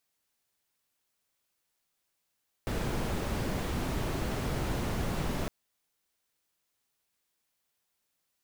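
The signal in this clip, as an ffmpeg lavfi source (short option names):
-f lavfi -i "anoisesrc=c=brown:a=0.124:d=2.81:r=44100:seed=1"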